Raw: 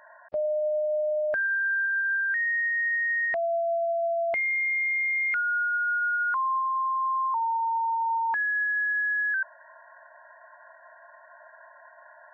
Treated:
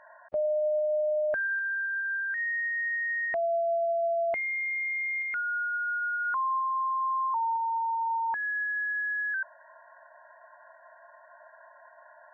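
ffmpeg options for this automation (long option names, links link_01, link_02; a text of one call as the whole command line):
ffmpeg -i in.wav -af "asetnsamples=nb_out_samples=441:pad=0,asendcmd='0.79 lowpass f 1500;1.59 lowpass f 1100;2.38 lowpass f 1500;5.22 lowpass f 1100;6.25 lowpass f 1400;7.56 lowpass f 1000;8.43 lowpass f 1300',lowpass=frequency=1900:poles=1" out.wav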